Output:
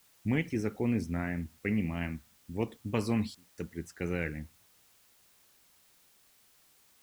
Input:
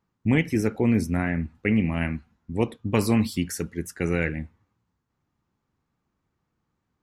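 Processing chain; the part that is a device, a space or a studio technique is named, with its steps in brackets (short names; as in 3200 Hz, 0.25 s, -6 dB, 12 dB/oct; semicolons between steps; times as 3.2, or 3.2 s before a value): worn cassette (LPF 7900 Hz; wow and flutter; level dips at 3.35, 0.225 s -30 dB; white noise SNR 29 dB); gain -8.5 dB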